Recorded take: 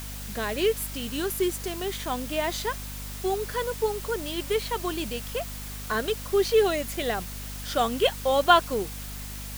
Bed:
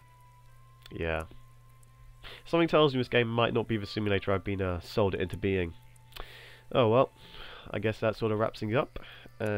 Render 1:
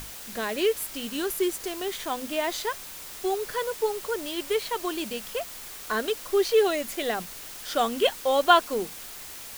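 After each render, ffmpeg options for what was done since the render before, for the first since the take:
-af "bandreject=f=50:t=h:w=6,bandreject=f=100:t=h:w=6,bandreject=f=150:t=h:w=6,bandreject=f=200:t=h:w=6,bandreject=f=250:t=h:w=6"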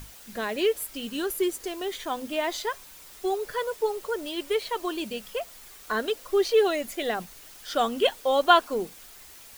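-af "afftdn=nr=8:nf=-41"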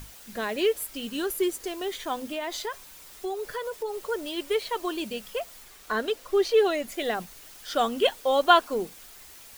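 -filter_complex "[0:a]asettb=1/sr,asplit=3[a][b][c];[a]atrim=end=2.184[d];[b]atrim=start=2.18:end=4.08,asetpts=PTS-STARTPTS,afade=t=in:d=0.004:c=qsin,afade=t=out:st=1.896:d=0.004:c=qsin,acompressor=threshold=-29dB:ratio=3:attack=3.2:release=140:knee=1:detection=peak[e];[c]atrim=start=4.076[f];[d][e]acrossfade=d=0.004:c1=hsin:c2=qsin[g];[g][f]acrossfade=d=0.004:c1=qsin:c2=hsin,asettb=1/sr,asplit=3[h][i][j];[h]atrim=end=5.634[k];[i]atrim=start=5.63:end=6.92,asetpts=PTS-STARTPTS,afade=t=in:d=0.004:c=qsin,afade=t=out:st=1.286:d=0.004:c=qsin,highshelf=f=6.7k:g=-4.5[l];[j]atrim=start=6.916[m];[k][l]acrossfade=d=0.004:c1=hsin:c2=qsin[n];[n][m]acrossfade=d=0.004:c1=qsin:c2=hsin"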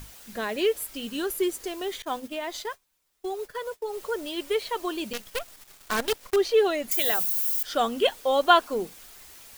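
-filter_complex "[0:a]asettb=1/sr,asplit=3[a][b][c];[a]atrim=end=2.024[d];[b]atrim=start=2.02:end=3.93,asetpts=PTS-STARTPTS,afade=t=in:d=0.004:c=qsin,afade=t=out:st=1.906:d=0.004:c=qsin,agate=range=-33dB:threshold=-33dB:ratio=3:release=100:detection=peak[e];[c]atrim=start=3.926[f];[d][e]acrossfade=d=0.004:c1=hsin:c2=qsin[g];[g][f]acrossfade=d=0.004:c1=qsin:c2=hsin,asettb=1/sr,asplit=3[h][i][j];[h]atrim=end=5.134[k];[i]atrim=start=5.13:end=6.36,asetpts=PTS-STARTPTS,afade=t=in:d=0.004:c=qsin,afade=t=out:st=1.226:d=0.004:c=qsin,acrusher=bits=5:dc=4:mix=0:aa=0.000001[l];[j]atrim=start=6.356[m];[k][l]acrossfade=d=0.004:c1=hsin:c2=qsin[n];[n][m]acrossfade=d=0.004:c1=qsin:c2=hsin,asettb=1/sr,asplit=3[o][p][q];[o]atrim=end=6.914[r];[p]atrim=start=6.91:end=7.63,asetpts=PTS-STARTPTS,afade=t=in:d=0.004:c=qsin,afade=t=out:st=0.716:d=0.004:c=qsin,aemphasis=mode=production:type=riaa[s];[q]atrim=start=7.626[t];[r][s]acrossfade=d=0.004:c1=hsin:c2=qsin[u];[u][t]acrossfade=d=0.004:c1=qsin:c2=hsin"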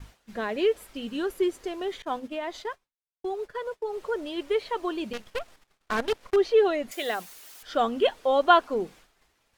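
-af "aemphasis=mode=reproduction:type=75fm,agate=range=-33dB:threshold=-45dB:ratio=3:detection=peak"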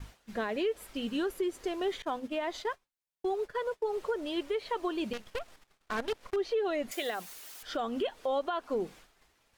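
-af "acompressor=threshold=-25dB:ratio=2.5,alimiter=limit=-23.5dB:level=0:latency=1:release=198"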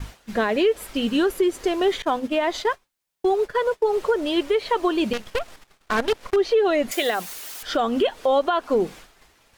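-af "volume=11.5dB"

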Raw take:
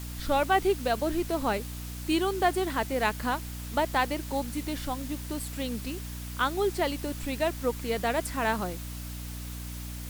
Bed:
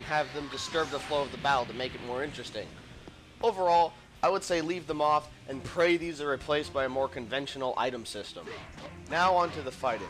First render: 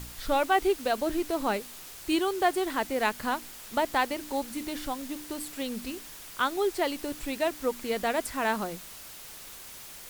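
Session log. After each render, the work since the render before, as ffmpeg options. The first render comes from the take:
-af "bandreject=f=60:t=h:w=4,bandreject=f=120:t=h:w=4,bandreject=f=180:t=h:w=4,bandreject=f=240:t=h:w=4,bandreject=f=300:t=h:w=4"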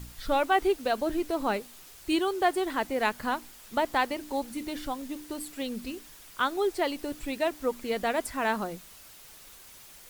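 -af "afftdn=nr=6:nf=-45"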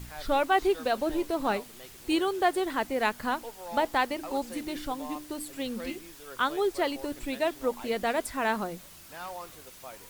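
-filter_complex "[1:a]volume=-15.5dB[a];[0:a][a]amix=inputs=2:normalize=0"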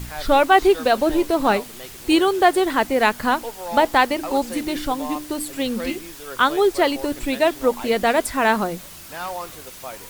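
-af "volume=10dB,alimiter=limit=-3dB:level=0:latency=1"

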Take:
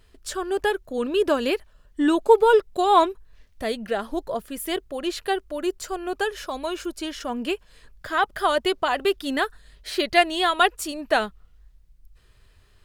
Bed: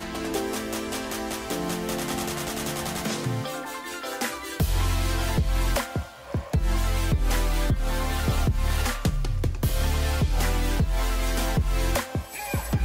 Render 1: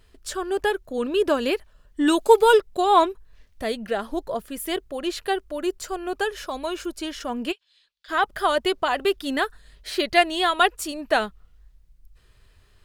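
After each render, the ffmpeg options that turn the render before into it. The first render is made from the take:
-filter_complex "[0:a]asplit=3[a][b][c];[a]afade=t=out:st=2.06:d=0.02[d];[b]highshelf=f=2.5k:g=10.5,afade=t=in:st=2.06:d=0.02,afade=t=out:st=2.57:d=0.02[e];[c]afade=t=in:st=2.57:d=0.02[f];[d][e][f]amix=inputs=3:normalize=0,asplit=3[g][h][i];[g]afade=t=out:st=7.51:d=0.02[j];[h]bandpass=f=3.7k:t=q:w=3,afade=t=in:st=7.51:d=0.02,afade=t=out:st=8.08:d=0.02[k];[i]afade=t=in:st=8.08:d=0.02[l];[j][k][l]amix=inputs=3:normalize=0"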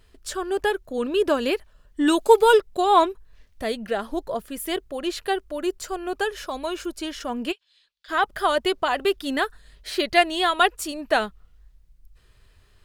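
-af anull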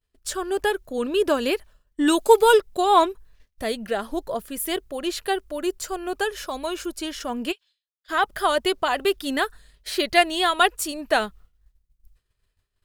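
-af "agate=range=-33dB:threshold=-42dB:ratio=3:detection=peak,highshelf=f=6.7k:g=6.5"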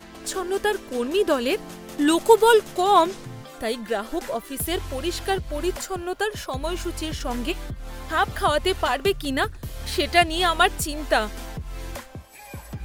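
-filter_complex "[1:a]volume=-10dB[a];[0:a][a]amix=inputs=2:normalize=0"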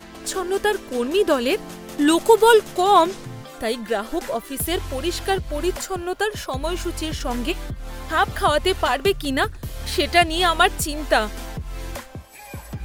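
-af "volume=2.5dB,alimiter=limit=-3dB:level=0:latency=1"

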